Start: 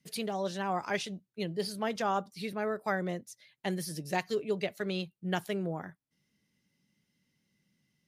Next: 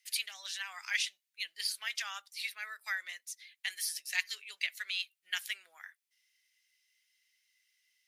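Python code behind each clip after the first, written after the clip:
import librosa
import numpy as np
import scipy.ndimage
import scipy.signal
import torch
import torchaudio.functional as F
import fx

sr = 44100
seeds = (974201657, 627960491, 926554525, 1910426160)

y = scipy.signal.sosfilt(scipy.signal.cheby1(3, 1.0, 2000.0, 'highpass', fs=sr, output='sos'), x)
y = y * 10.0 ** (6.5 / 20.0)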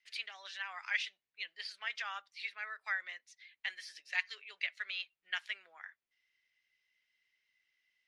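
y = fx.spacing_loss(x, sr, db_at_10k=34)
y = y * 10.0 ** (6.0 / 20.0)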